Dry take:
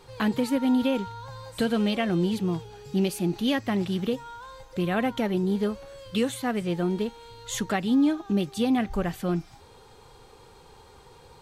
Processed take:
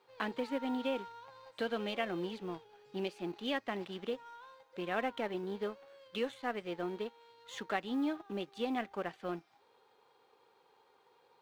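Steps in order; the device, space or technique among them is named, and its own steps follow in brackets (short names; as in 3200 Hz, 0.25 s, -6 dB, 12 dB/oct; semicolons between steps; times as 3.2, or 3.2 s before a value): phone line with mismatched companding (BPF 380–3500 Hz; G.711 law mismatch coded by A); gain -5.5 dB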